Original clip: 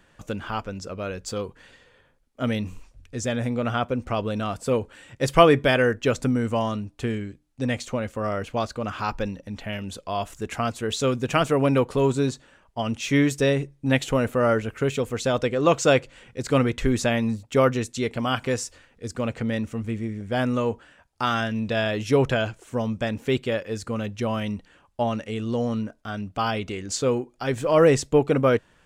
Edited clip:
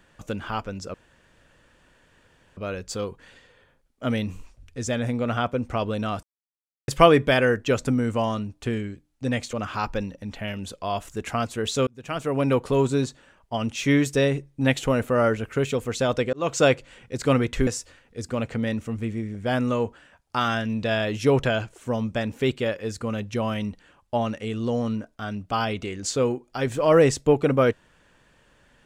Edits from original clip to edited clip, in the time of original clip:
0.94 insert room tone 1.63 s
4.6–5.25 mute
7.9–8.78 cut
11.12–11.85 fade in
15.58–15.84 fade in
16.92–18.53 cut

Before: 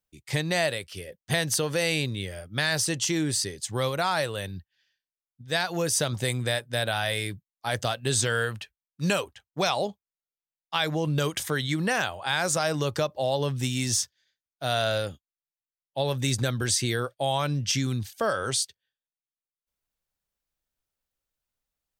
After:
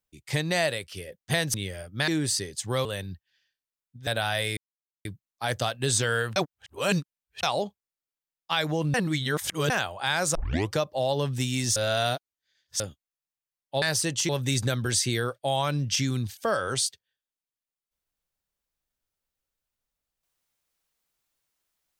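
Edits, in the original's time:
1.54–2.12 cut
2.66–3.13 move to 16.05
3.9–4.3 cut
5.52–6.78 cut
7.28 insert silence 0.48 s
8.59–9.66 reverse
11.17–11.93 reverse
12.58 tape start 0.37 s
13.99–15.03 reverse

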